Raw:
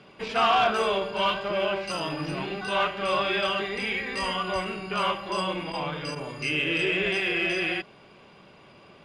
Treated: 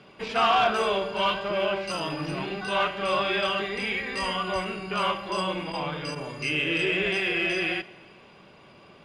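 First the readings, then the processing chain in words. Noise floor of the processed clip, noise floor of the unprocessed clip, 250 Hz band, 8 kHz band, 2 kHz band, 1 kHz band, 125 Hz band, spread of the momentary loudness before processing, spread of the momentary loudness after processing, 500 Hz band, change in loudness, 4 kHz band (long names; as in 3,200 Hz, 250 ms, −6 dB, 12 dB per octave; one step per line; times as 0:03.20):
−52 dBFS, −53 dBFS, +0.5 dB, 0.0 dB, 0.0 dB, 0.0 dB, +0.5 dB, 8 LU, 8 LU, 0.0 dB, 0.0 dB, 0.0 dB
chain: dense smooth reverb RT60 1.7 s, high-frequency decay 1×, DRR 18 dB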